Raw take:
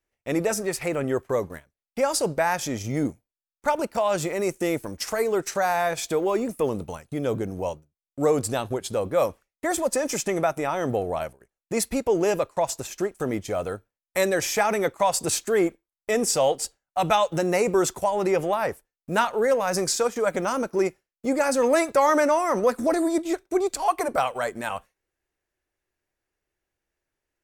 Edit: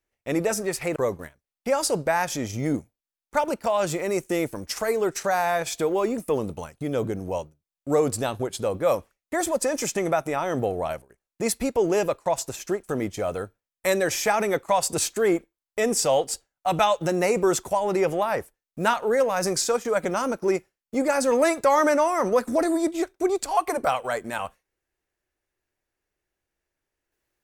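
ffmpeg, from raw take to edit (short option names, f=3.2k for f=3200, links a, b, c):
-filter_complex "[0:a]asplit=2[a][b];[a]atrim=end=0.962[c];[b]atrim=start=1.268[d];[c][d]acrossfade=d=0.004:c1=hsin:c2=hsin"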